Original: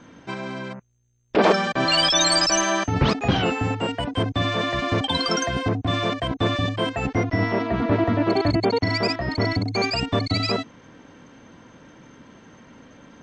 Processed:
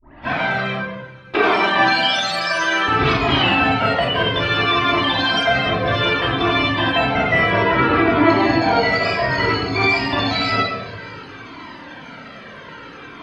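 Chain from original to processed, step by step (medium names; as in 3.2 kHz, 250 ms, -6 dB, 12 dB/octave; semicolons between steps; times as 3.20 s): tape start-up on the opening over 0.41 s; tilt EQ +4 dB/octave; in parallel at +2.5 dB: compression 6:1, threshold -29 dBFS, peak gain reduction 19 dB; on the sum: peak limiter -11 dBFS, peak gain reduction 11 dB; harmony voices +3 st -17 dB, +7 st -10 dB; distance through air 380 m; on a send: thinning echo 594 ms, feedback 73%, high-pass 980 Hz, level -23 dB; on the sum: simulated room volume 910 m³, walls mixed, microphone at 2.9 m; Shepard-style flanger falling 0.6 Hz; trim +6.5 dB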